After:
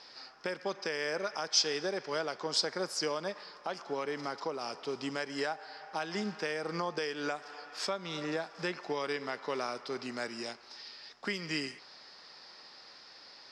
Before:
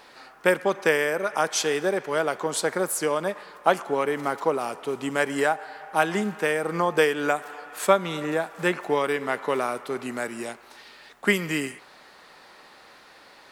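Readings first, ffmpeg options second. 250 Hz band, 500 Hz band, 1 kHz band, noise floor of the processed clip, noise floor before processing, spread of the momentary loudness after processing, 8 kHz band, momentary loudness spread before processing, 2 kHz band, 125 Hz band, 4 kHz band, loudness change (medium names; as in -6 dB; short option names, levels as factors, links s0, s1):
-10.5 dB, -12.0 dB, -12.0 dB, -54 dBFS, -51 dBFS, 19 LU, -7.5 dB, 9 LU, -11.5 dB, -10.5 dB, -1.0 dB, -10.0 dB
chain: -af "highpass=47,alimiter=limit=0.158:level=0:latency=1:release=281,lowpass=f=5100:t=q:w=10,volume=0.398"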